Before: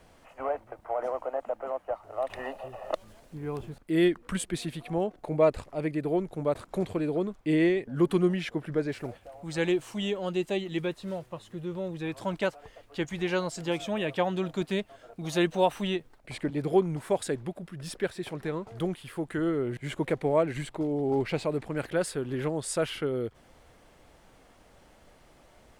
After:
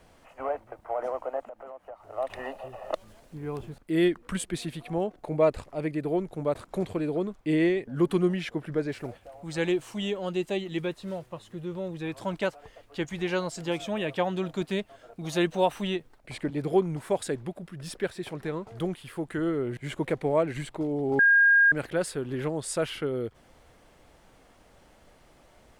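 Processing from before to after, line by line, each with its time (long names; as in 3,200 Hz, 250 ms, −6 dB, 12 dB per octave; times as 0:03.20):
0:01.41–0:02.08: downward compressor 3 to 1, threshold −42 dBFS
0:21.19–0:21.72: beep over 1,620 Hz −15.5 dBFS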